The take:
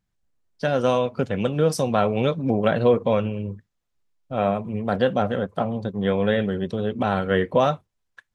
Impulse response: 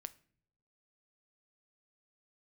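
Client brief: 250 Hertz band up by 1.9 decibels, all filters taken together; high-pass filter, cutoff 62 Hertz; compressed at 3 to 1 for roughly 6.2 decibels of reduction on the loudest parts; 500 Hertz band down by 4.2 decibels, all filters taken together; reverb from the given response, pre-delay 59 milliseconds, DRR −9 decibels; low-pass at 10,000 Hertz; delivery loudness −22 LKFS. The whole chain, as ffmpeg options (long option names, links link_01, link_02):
-filter_complex "[0:a]highpass=62,lowpass=10000,equalizer=frequency=250:width_type=o:gain=3.5,equalizer=frequency=500:width_type=o:gain=-5.5,acompressor=threshold=-24dB:ratio=3,asplit=2[link_01][link_02];[1:a]atrim=start_sample=2205,adelay=59[link_03];[link_02][link_03]afir=irnorm=-1:irlink=0,volume=13.5dB[link_04];[link_01][link_04]amix=inputs=2:normalize=0,volume=-2.5dB"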